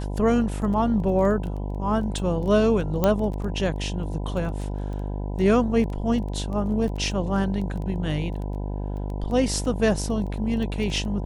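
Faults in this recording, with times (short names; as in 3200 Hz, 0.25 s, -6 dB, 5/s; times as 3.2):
buzz 50 Hz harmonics 20 -29 dBFS
crackle 10/s -31 dBFS
3.04 pop -8 dBFS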